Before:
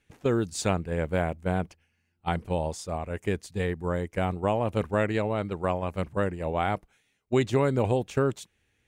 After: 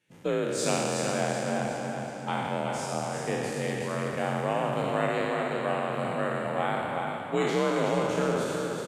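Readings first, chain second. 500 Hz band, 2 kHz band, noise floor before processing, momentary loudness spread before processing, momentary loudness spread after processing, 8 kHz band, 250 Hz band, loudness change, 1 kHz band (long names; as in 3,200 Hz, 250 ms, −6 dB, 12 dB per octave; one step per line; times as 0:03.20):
0.0 dB, +3.0 dB, −73 dBFS, 7 LU, 5 LU, +5.0 dB, −1.5 dB, −0.5 dB, +2.0 dB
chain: peak hold with a decay on every bin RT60 2.54 s
frequency shifter +46 Hz
low-shelf EQ 99 Hz −7.5 dB
on a send: repeating echo 370 ms, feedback 46%, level −5.5 dB
on the sum: level −5 dB
Ogg Vorbis 48 kbit/s 44,100 Hz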